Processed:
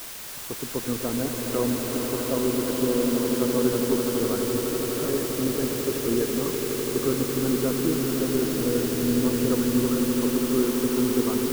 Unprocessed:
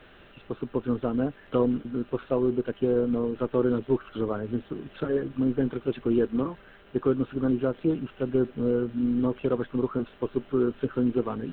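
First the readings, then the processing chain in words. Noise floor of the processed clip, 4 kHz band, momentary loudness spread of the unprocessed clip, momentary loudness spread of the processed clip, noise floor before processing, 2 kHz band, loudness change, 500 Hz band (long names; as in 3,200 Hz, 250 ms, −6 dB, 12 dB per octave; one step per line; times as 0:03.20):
−36 dBFS, can't be measured, 6 LU, 4 LU, −53 dBFS, +8.0 dB, +3.0 dB, +2.0 dB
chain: bit-depth reduction 6 bits, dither triangular
echo that builds up and dies away 83 ms, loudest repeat 8, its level −9.5 dB
level −2 dB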